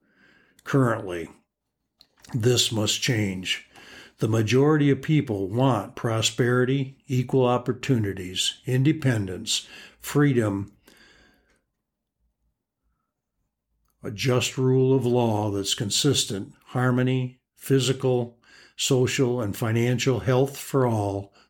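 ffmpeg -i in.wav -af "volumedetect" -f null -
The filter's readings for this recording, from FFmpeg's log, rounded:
mean_volume: -24.8 dB
max_volume: -8.3 dB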